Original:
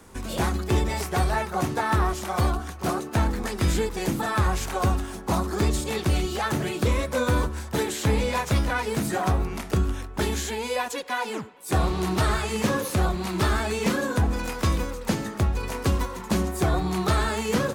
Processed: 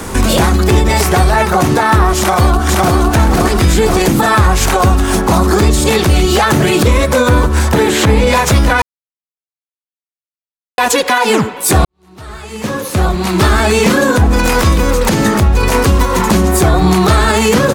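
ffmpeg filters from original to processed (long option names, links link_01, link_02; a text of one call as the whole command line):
ffmpeg -i in.wav -filter_complex "[0:a]asplit=2[link_01][link_02];[link_02]afade=type=in:start_time=2.18:duration=0.01,afade=type=out:start_time=2.97:duration=0.01,aecho=0:1:510|1020|1530|2040|2550:0.944061|0.377624|0.15105|0.0604199|0.024168[link_03];[link_01][link_03]amix=inputs=2:normalize=0,asettb=1/sr,asplit=3[link_04][link_05][link_06];[link_04]atrim=end=7.294[link_07];[link_05]atrim=start=7.29:end=8.27,asetpts=PTS-STARTPTS,afade=type=in:duration=0.004:curve=qsin,afade=type=out:start_time=0.976:duration=0.004:curve=qsin,acrossover=split=3000[link_08][link_09];[link_09]acompressor=threshold=-41dB:ratio=4:attack=1:release=60[link_10];[link_08][link_10]amix=inputs=2:normalize=0[link_11];[link_06]atrim=start=8.266[link_12];[link_07][link_11]acrossfade=duration=0.004:curve1=hsin:curve2=qsin[link_13];[link_13][link_12]acrossfade=duration=0.004:curve1=qsin:curve2=hsin,asplit=4[link_14][link_15][link_16][link_17];[link_14]atrim=end=8.82,asetpts=PTS-STARTPTS,afade=type=out:start_time=8.816:duration=0.004:curve=hsin[link_18];[link_15]atrim=start=8.82:end=10.78,asetpts=PTS-STARTPTS,volume=0[link_19];[link_16]atrim=start=10.78:end=11.85,asetpts=PTS-STARTPTS,afade=type=in:duration=0.004:curve=hsin,afade=type=out:start_time=1.066:duration=0.004:curve=hsin[link_20];[link_17]atrim=start=11.85,asetpts=PTS-STARTPTS,afade=type=in:duration=2.85:curve=qua[link_21];[link_18][link_19][link_20][link_21]concat=n=4:v=0:a=1,acompressor=threshold=-31dB:ratio=6,alimiter=level_in=27dB:limit=-1dB:release=50:level=0:latency=1,volume=-1dB" out.wav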